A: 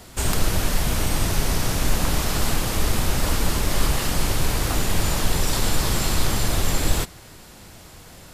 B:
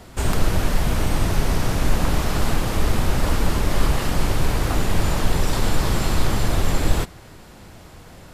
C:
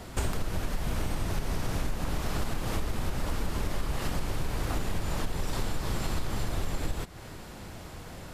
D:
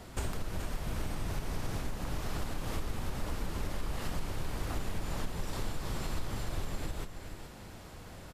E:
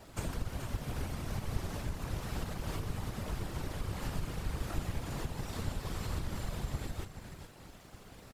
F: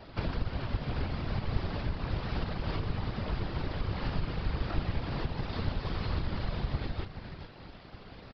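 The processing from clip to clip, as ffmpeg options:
-af "highshelf=f=3.1k:g=-9.5,volume=2.5dB"
-af "acompressor=threshold=-25dB:ratio=12"
-af "aecho=1:1:424:0.335,volume=-5.5dB"
-af "aeval=exprs='sgn(val(0))*max(abs(val(0))-0.00178,0)':c=same,afftfilt=real='hypot(re,im)*cos(2*PI*random(0))':imag='hypot(re,im)*sin(2*PI*random(1))':win_size=512:overlap=0.75,volume=4.5dB"
-af "aresample=11025,aresample=44100,volume=4.5dB"

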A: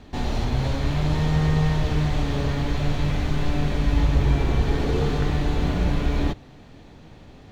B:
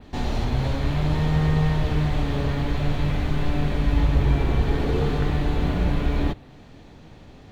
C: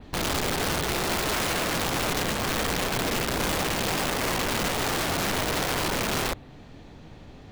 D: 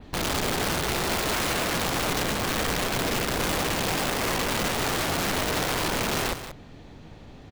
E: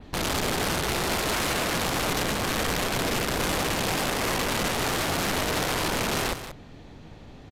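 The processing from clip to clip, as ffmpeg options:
-af "adynamicequalizer=threshold=0.00126:dfrequency=6100:dqfactor=1.3:tfrequency=6100:tqfactor=1.3:attack=5:release=100:ratio=0.375:range=3:mode=cutabove:tftype=bell"
-af "aeval=exprs='(mod(12.6*val(0)+1,2)-1)/12.6':c=same"
-af "aecho=1:1:182:0.282"
-af "aresample=32000,aresample=44100"

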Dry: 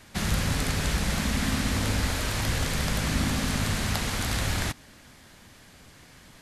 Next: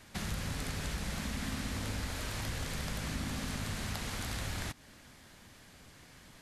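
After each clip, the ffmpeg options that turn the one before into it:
-af "acompressor=threshold=-34dB:ratio=2,volume=-4.5dB"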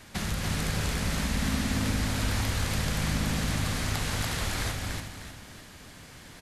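-af "aecho=1:1:287|363|594|894:0.668|0.282|0.251|0.119,volume=6dB"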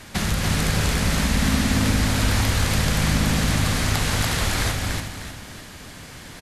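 -af "aresample=32000,aresample=44100,volume=8dB"

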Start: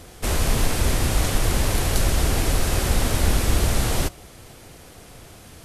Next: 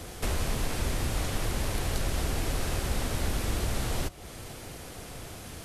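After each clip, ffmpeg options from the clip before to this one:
-filter_complex "[0:a]acrossover=split=98|5200[a][b][c];[a]acompressor=threshold=-32dB:ratio=4[d];[b]acompressor=threshold=-36dB:ratio=4[e];[c]acompressor=threshold=-46dB:ratio=4[f];[d][e][f]amix=inputs=3:normalize=0,volume=2dB"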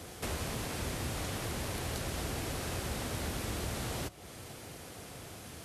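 -af "highpass=76,volume=-4dB"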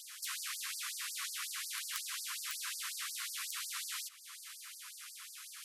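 -af "aeval=exprs='(mod(16.8*val(0)+1,2)-1)/16.8':c=same,afftfilt=real='re*gte(b*sr/1024,970*pow(4500/970,0.5+0.5*sin(2*PI*5.5*pts/sr)))':imag='im*gte(b*sr/1024,970*pow(4500/970,0.5+0.5*sin(2*PI*5.5*pts/sr)))':win_size=1024:overlap=0.75,volume=2.5dB"

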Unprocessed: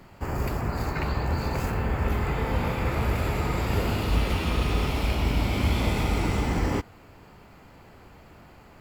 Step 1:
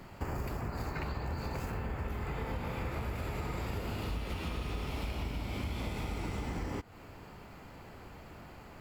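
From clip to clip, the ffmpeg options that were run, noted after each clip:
-af "acompressor=threshold=-33dB:ratio=12"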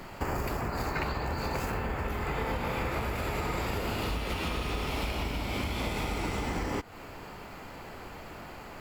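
-af "equalizer=f=91:w=0.41:g=-7,volume=8.5dB"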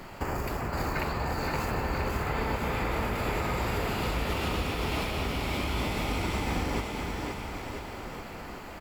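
-af "aecho=1:1:520|988|1409|1788|2129:0.631|0.398|0.251|0.158|0.1"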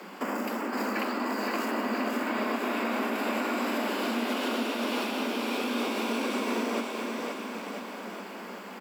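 -af "afreqshift=180"

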